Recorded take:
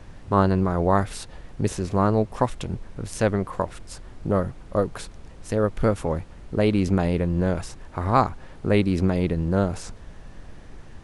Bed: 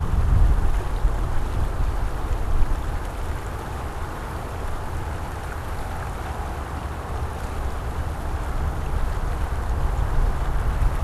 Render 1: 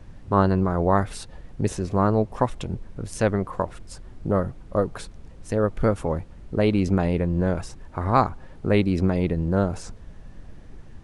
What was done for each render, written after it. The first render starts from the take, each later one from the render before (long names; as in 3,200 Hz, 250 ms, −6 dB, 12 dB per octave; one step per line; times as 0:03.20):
broadband denoise 6 dB, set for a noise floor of −44 dBFS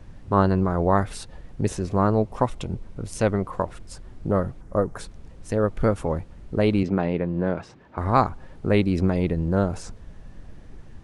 0:02.24–0:03.52: notch filter 1,700 Hz, Q 11
0:04.61–0:05.01: flat-topped bell 3,300 Hz −9.5 dB 1.2 octaves
0:06.83–0:07.98: band-pass filter 150–3,500 Hz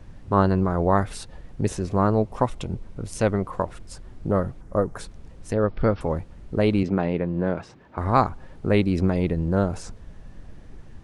0:05.53–0:06.01: Butterworth low-pass 5,400 Hz 96 dB per octave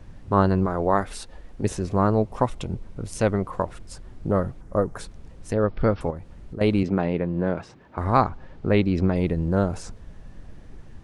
0:00.66–0:01.64: parametric band 120 Hz −14.5 dB
0:06.10–0:06.61: downward compressor 3 to 1, threshold −33 dBFS
0:08.17–0:09.16: low-pass filter 5,300 Hz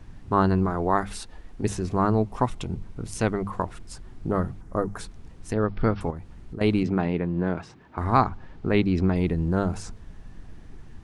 parametric band 550 Hz −8.5 dB 0.35 octaves
mains-hum notches 50/100/150/200 Hz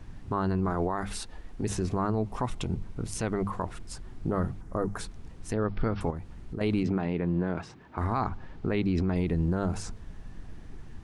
brickwall limiter −18.5 dBFS, peak gain reduction 11.5 dB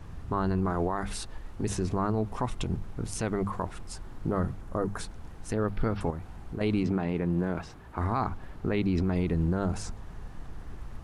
mix in bed −23 dB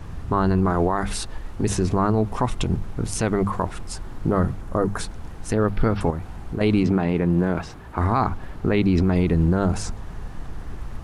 level +8 dB